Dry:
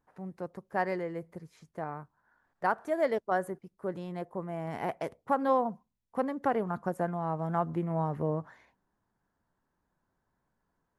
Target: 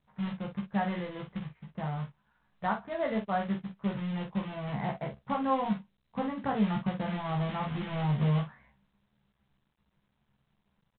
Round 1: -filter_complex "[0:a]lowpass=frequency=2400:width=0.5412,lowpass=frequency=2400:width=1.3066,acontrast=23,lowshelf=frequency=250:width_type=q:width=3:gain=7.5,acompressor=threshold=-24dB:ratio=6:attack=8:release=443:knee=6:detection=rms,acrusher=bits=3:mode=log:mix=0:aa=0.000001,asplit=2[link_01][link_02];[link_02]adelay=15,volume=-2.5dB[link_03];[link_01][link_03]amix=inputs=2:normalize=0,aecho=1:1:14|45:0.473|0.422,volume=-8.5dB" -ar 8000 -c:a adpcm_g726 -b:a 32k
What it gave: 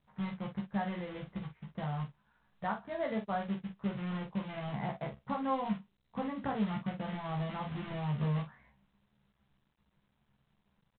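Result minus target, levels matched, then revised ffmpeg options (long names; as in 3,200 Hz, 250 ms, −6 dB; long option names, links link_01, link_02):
downward compressor: peak gain reduction +6 dB
-filter_complex "[0:a]lowpass=frequency=2400:width=0.5412,lowpass=frequency=2400:width=1.3066,acontrast=23,lowshelf=frequency=250:width_type=q:width=3:gain=7.5,acompressor=threshold=-16.5dB:ratio=6:attack=8:release=443:knee=6:detection=rms,acrusher=bits=3:mode=log:mix=0:aa=0.000001,asplit=2[link_01][link_02];[link_02]adelay=15,volume=-2.5dB[link_03];[link_01][link_03]amix=inputs=2:normalize=0,aecho=1:1:14|45:0.473|0.422,volume=-8.5dB" -ar 8000 -c:a adpcm_g726 -b:a 32k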